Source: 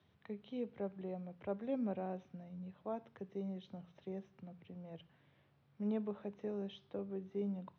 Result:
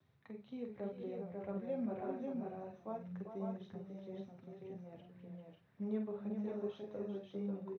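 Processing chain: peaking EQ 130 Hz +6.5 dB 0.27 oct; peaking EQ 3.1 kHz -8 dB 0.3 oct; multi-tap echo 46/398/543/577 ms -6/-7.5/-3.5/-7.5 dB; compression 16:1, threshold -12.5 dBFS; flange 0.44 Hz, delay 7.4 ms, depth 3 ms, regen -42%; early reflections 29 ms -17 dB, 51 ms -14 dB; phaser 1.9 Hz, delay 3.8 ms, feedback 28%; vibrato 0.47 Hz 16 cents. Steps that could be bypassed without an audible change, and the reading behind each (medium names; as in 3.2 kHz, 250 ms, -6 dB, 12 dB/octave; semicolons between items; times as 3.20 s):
compression, threshold -12.5 dBFS: peak at its input -24.5 dBFS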